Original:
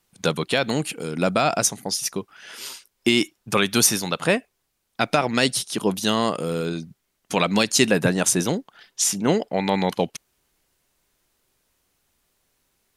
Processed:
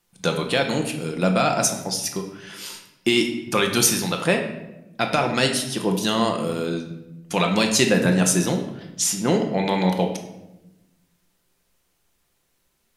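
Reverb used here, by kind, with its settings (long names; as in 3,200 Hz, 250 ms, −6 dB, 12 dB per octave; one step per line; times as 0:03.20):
rectangular room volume 380 cubic metres, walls mixed, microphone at 0.83 metres
level −1.5 dB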